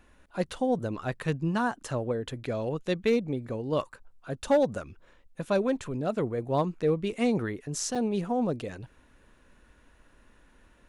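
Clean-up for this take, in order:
clipped peaks rebuilt −17 dBFS
repair the gap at 0:07.95, 5.1 ms

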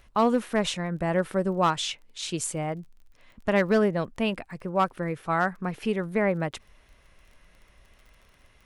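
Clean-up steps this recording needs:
clipped peaks rebuilt −14 dBFS
click removal

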